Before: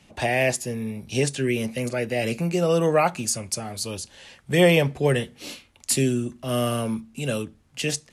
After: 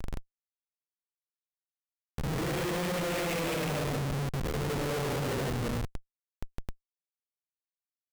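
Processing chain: speakerphone echo 0.3 s, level -15 dB; Paulstretch 4.6×, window 0.25 s, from 3.99; Schmitt trigger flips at -24 dBFS; gain -8 dB

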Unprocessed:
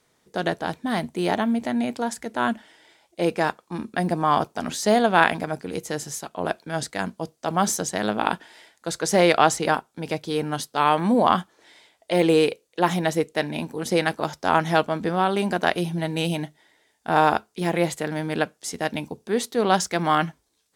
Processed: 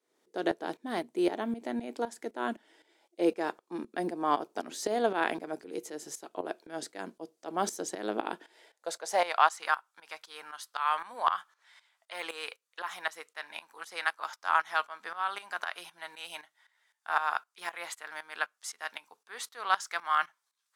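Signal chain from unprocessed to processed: high-pass sweep 340 Hz -> 1200 Hz, 8.44–9.56; tremolo saw up 3.9 Hz, depth 80%; gain -7 dB

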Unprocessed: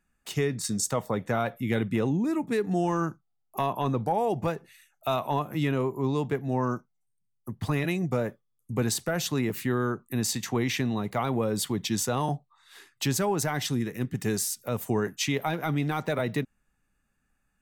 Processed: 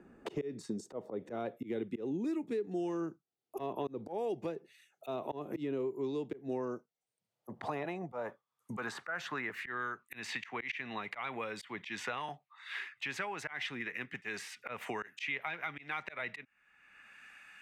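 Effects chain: band-pass sweep 380 Hz -> 2300 Hz, 6.42–10.08; auto swell 0.197 s; three-band squash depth 100%; gain +1 dB

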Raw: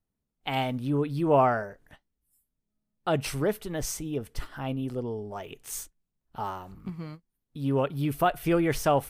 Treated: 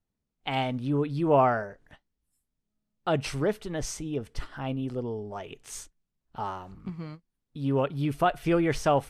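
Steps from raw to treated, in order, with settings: LPF 7400 Hz 12 dB/oct

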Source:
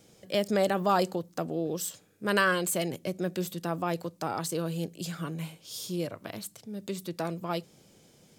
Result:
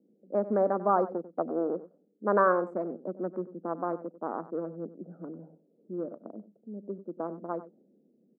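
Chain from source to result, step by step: Wiener smoothing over 41 samples; low-pass opened by the level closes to 310 Hz, open at -24 dBFS; elliptic band-pass 220–1300 Hz, stop band 40 dB; 1.36–2.64 dynamic EQ 720 Hz, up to +6 dB, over -42 dBFS, Q 0.92; on a send: echo 95 ms -15.5 dB; on the sum: gain +1.5 dB

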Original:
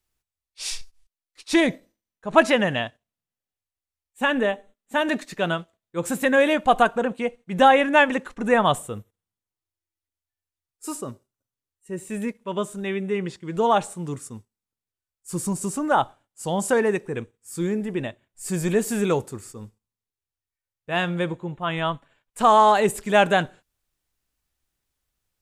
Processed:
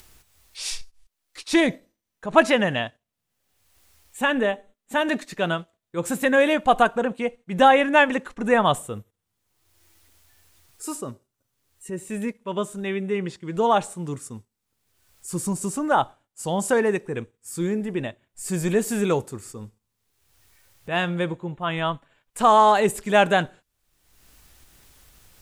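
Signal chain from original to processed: upward compressor, threshold -32 dBFS

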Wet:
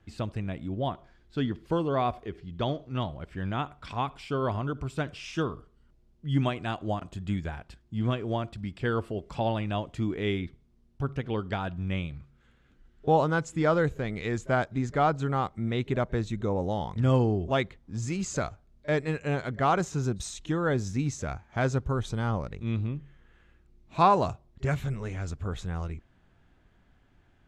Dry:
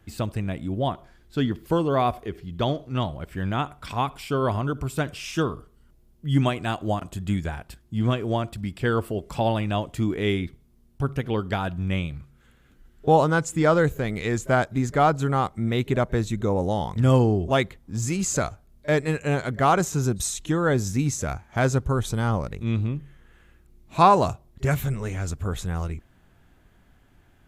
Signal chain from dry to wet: LPF 5700 Hz 12 dB/oct; gain -5 dB

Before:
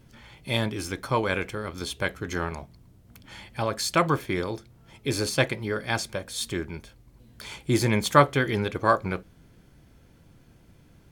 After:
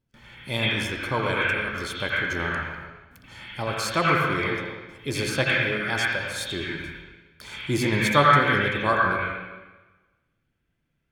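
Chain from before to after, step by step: gate with hold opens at -42 dBFS; on a send: band shelf 2200 Hz +12 dB + reverb RT60 1.2 s, pre-delay 77 ms, DRR -7.5 dB; on the sum: gain -2.5 dB

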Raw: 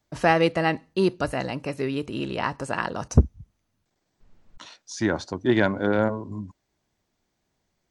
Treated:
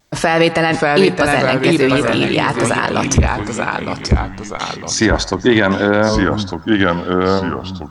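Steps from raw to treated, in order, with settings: tilt shelf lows -3 dB, about 1100 Hz; notches 60/120/180 Hz; vibrato 0.32 Hz 10 cents; echoes that change speed 0.552 s, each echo -2 st, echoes 3, each echo -6 dB; on a send: narrowing echo 0.113 s, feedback 74%, band-pass 1100 Hz, level -21 dB; on the sum: maximiser +16 dB; gain -1 dB

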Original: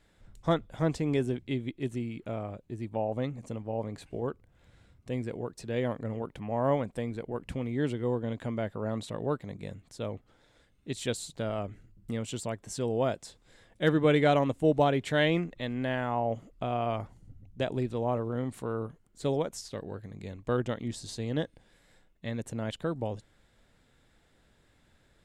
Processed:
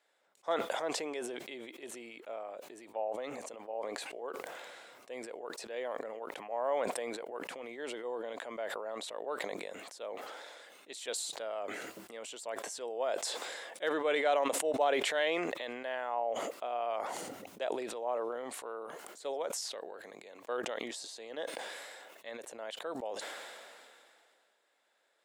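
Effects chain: ladder high-pass 440 Hz, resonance 25%; sustainer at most 25 dB/s

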